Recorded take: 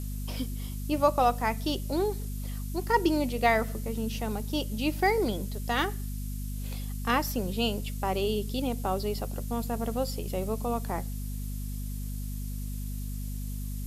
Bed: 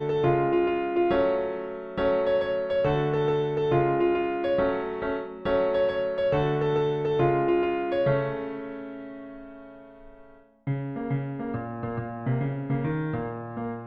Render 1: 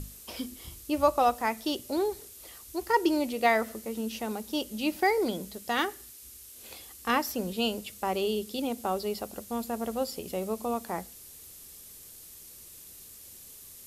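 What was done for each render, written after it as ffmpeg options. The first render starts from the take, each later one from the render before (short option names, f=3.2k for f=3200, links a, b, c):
-af "bandreject=f=50:t=h:w=6,bandreject=f=100:t=h:w=6,bandreject=f=150:t=h:w=6,bandreject=f=200:t=h:w=6,bandreject=f=250:t=h:w=6"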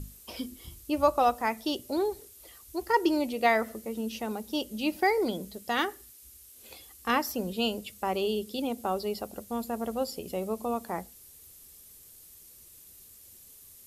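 -af "afftdn=nr=6:nf=-49"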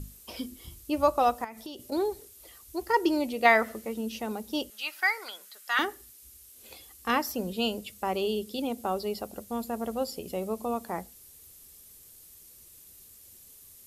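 -filter_complex "[0:a]asettb=1/sr,asplit=3[a][b][c];[a]atrim=end=1.444[d];[b]atrim=start=1.44:end=1.92,asetpts=PTS-STARTPTS,afade=t=in:d=0.004:c=qsin,afade=t=out:st=0.476:d=0.004:c=qsin,acompressor=threshold=-36dB:ratio=16:attack=3.2:release=140:knee=1:detection=peak[e];[c]atrim=start=1.916[f];[d][e]acrossfade=d=0.004:c1=hsin:c2=qsin[g];[g][f]acrossfade=d=0.004:c1=qsin:c2=hsin,asettb=1/sr,asplit=3[h][i][j];[h]atrim=end=3.454[k];[i]atrim=start=3.45:end=3.94,asetpts=PTS-STARTPTS,afade=t=in:d=0.004:c=qsin,afade=t=out:st=0.486:d=0.004:c=qsin,equalizer=f=1.7k:w=0.54:g=6[l];[j]atrim=start=3.936[m];[k][l]acrossfade=d=0.004:c1=hsin:c2=qsin[n];[n][m]acrossfade=d=0.004:c1=qsin:c2=hsin,asettb=1/sr,asplit=3[o][p][q];[o]atrim=end=4.704[r];[p]atrim=start=4.7:end=5.79,asetpts=PTS-STARTPTS,afade=t=in:d=0.004:c=qsin,afade=t=out:st=1.086:d=0.004:c=qsin,highpass=f=1.4k:t=q:w=2.8[s];[q]atrim=start=5.786[t];[r][s]acrossfade=d=0.004:c1=hsin:c2=qsin[u];[u][t]acrossfade=d=0.004:c1=qsin:c2=hsin"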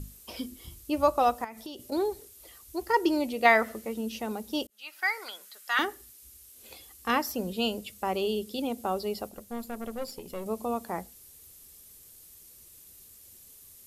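-filter_complex "[0:a]asettb=1/sr,asplit=3[a][b][c];[a]atrim=end=9.294[d];[b]atrim=start=9.29:end=10.46,asetpts=PTS-STARTPTS,afade=t=in:d=0.004:c=qsin,afade=t=out:st=1.166:d=0.004:c=qsin,aeval=exprs='(tanh(25.1*val(0)+0.65)-tanh(0.65))/25.1':c=same[e];[c]atrim=start=10.456[f];[d][e]acrossfade=d=0.004:c1=hsin:c2=qsin[g];[g][f]acrossfade=d=0.004:c1=qsin:c2=hsin,asplit=2[h][i];[h]atrim=end=4.67,asetpts=PTS-STARTPTS,afade=t=out:st=4.666:d=0.004:c=hsin[j];[i]atrim=start=4.67,asetpts=PTS-STARTPTS,afade=t=in:d=0.52[k];[j][k]concat=n=2:v=0:a=1"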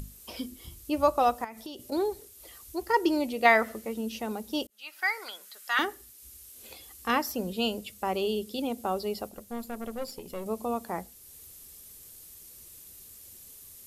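-af "acompressor=mode=upward:threshold=-43dB:ratio=2.5"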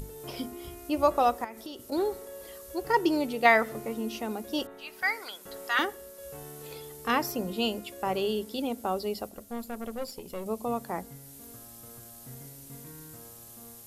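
-filter_complex "[1:a]volume=-20.5dB[a];[0:a][a]amix=inputs=2:normalize=0"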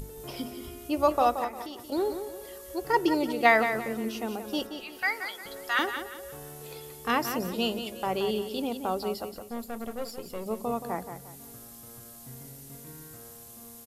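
-af "aecho=1:1:176|352|528|704:0.355|0.117|0.0386|0.0128"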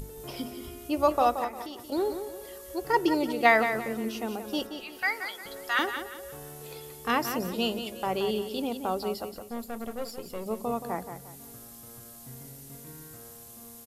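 -af anull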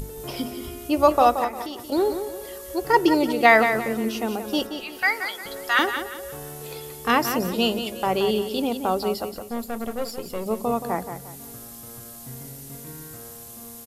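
-af "volume=6.5dB,alimiter=limit=-3dB:level=0:latency=1"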